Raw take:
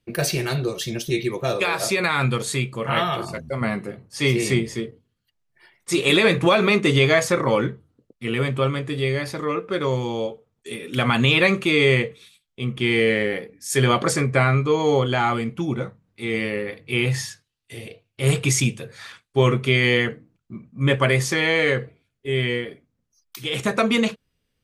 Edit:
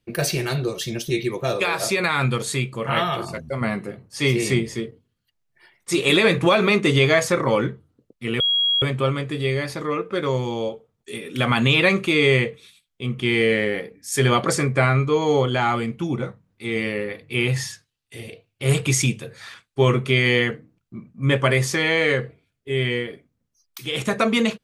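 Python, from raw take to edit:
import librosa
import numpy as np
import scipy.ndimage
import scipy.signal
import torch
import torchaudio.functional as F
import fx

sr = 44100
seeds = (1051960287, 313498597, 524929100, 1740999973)

y = fx.edit(x, sr, fx.insert_tone(at_s=8.4, length_s=0.42, hz=3300.0, db=-16.5), tone=tone)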